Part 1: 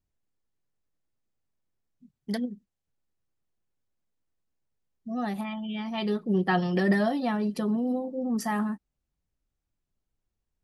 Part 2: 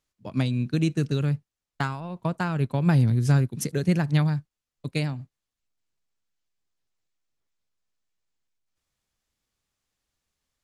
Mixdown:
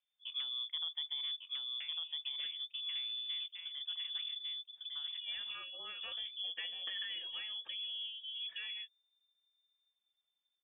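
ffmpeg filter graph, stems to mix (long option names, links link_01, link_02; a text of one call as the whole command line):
ffmpeg -i stem1.wav -i stem2.wav -filter_complex "[0:a]highpass=frequency=910:poles=1,adelay=100,volume=0dB[link_01];[1:a]lowpass=1500,asubboost=boost=5.5:cutoff=98,volume=-4.5dB,afade=type=out:start_time=1.54:duration=0.32:silence=0.316228,asplit=3[link_02][link_03][link_04];[link_03]volume=-5dB[link_05];[link_04]apad=whole_len=473550[link_06];[link_01][link_06]sidechaincompress=threshold=-40dB:ratio=8:attack=16:release=916[link_07];[link_05]aecho=0:1:1151:1[link_08];[link_07][link_02][link_08]amix=inputs=3:normalize=0,equalizer=frequency=840:width=0.32:gain=-3.5,acrossover=split=280|1900[link_09][link_10][link_11];[link_09]acompressor=threshold=-42dB:ratio=4[link_12];[link_10]acompressor=threshold=-46dB:ratio=4[link_13];[link_11]acompressor=threshold=-58dB:ratio=4[link_14];[link_12][link_13][link_14]amix=inputs=3:normalize=0,lowpass=frequency=3100:width_type=q:width=0.5098,lowpass=frequency=3100:width_type=q:width=0.6013,lowpass=frequency=3100:width_type=q:width=0.9,lowpass=frequency=3100:width_type=q:width=2.563,afreqshift=-3600" out.wav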